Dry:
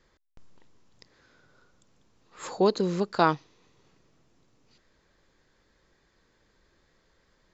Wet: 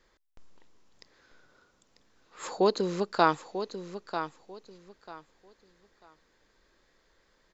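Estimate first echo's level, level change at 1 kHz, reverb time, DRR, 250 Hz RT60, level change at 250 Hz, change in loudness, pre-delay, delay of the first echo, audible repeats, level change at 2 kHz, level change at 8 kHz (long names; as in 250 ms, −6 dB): −10.0 dB, 0.0 dB, no reverb audible, no reverb audible, no reverb audible, −3.0 dB, −3.0 dB, no reverb audible, 943 ms, 2, +0.5 dB, can't be measured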